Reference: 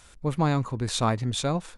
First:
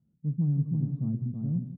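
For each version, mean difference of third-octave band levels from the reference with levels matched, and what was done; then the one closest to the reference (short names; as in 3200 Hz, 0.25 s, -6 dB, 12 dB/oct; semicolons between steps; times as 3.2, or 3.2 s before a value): 17.0 dB: Butterworth band-pass 170 Hz, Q 1.8; on a send: tapped delay 54/171/326/406/493 ms -16/-14.5/-4/-10.5/-13.5 dB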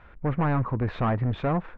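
7.0 dB: overloaded stage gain 25.5 dB; LPF 2100 Hz 24 dB/oct; gain +4.5 dB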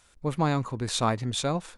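1.5 dB: gate -49 dBFS, range -7 dB; low shelf 160 Hz -5 dB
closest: third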